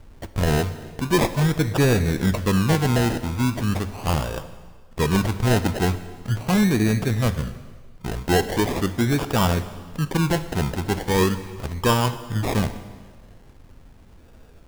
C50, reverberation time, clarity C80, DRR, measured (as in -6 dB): 12.5 dB, 1.6 s, 14.0 dB, 11.0 dB